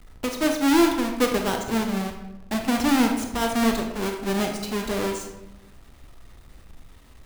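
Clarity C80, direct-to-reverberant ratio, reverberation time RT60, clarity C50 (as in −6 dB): 8.0 dB, 3.0 dB, 0.95 s, 5.5 dB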